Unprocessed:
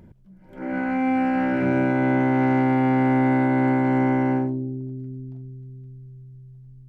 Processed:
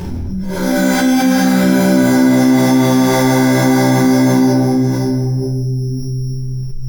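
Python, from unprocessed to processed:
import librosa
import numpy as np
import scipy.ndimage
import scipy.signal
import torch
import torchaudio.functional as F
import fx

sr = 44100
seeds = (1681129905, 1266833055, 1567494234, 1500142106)

y = fx.noise_reduce_blind(x, sr, reduce_db=8)
y = fx.chorus_voices(y, sr, voices=6, hz=0.96, base_ms=13, depth_ms=3.0, mix_pct=45)
y = np.repeat(y[::8], 8)[:len(y)]
y = fx.doubler(y, sr, ms=48.0, db=-7)
y = y + 10.0 ** (-18.5 / 20.0) * np.pad(y, (int(582 * sr / 1000.0), 0))[:len(y)]
y = fx.room_shoebox(y, sr, seeds[0], volume_m3=830.0, walls='mixed', distance_m=5.2)
y = fx.env_flatten(y, sr, amount_pct=70)
y = y * librosa.db_to_amplitude(-3.5)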